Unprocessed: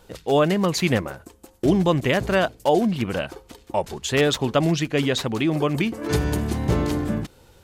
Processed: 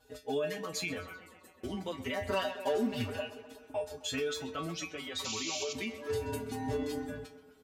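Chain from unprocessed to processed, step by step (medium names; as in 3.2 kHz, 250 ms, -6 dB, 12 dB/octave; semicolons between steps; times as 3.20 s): reverb removal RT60 0.92 s; feedback comb 87 Hz, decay 0.17 s, harmonics odd, mix 100%; 2.27–3.10 s: waveshaping leveller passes 2; 5.24–5.73 s: painted sound noise 2.2–7.4 kHz -37 dBFS; on a send: tape echo 129 ms, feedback 76%, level -16 dB, low-pass 4.9 kHz; on the sum: peak limiter -25 dBFS, peak gain reduction 9 dB; bass shelf 390 Hz -2.5 dB; de-hum 182.3 Hz, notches 38; endless flanger 4.4 ms +0.29 Hz; trim +3 dB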